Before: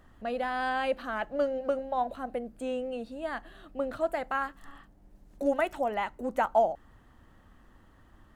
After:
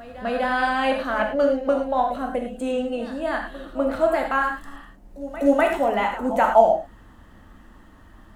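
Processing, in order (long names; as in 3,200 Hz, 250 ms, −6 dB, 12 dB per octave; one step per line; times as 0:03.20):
echo ahead of the sound 249 ms −16 dB
reverb whose tail is shaped and stops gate 130 ms flat, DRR 2 dB
level +7 dB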